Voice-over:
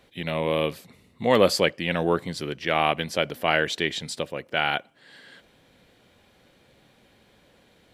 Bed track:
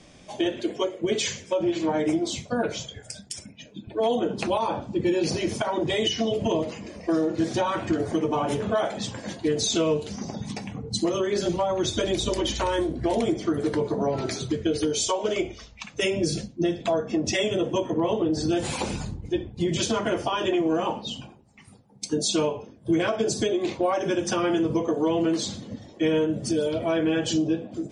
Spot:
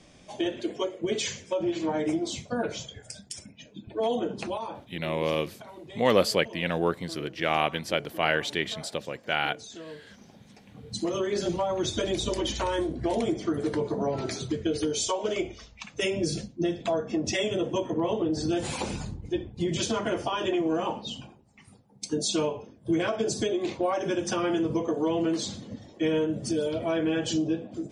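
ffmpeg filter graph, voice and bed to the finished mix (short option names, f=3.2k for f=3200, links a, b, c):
-filter_complex "[0:a]adelay=4750,volume=-3dB[a];[1:a]volume=13dB,afade=t=out:st=4.17:d=0.79:silence=0.158489,afade=t=in:st=10.66:d=0.51:silence=0.149624[b];[a][b]amix=inputs=2:normalize=0"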